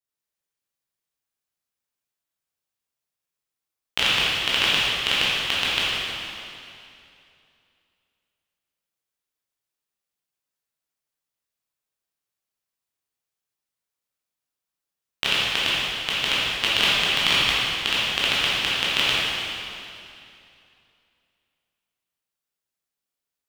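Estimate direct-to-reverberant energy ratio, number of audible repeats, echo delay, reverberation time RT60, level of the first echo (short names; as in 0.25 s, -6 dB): -9.0 dB, none, none, 2.6 s, none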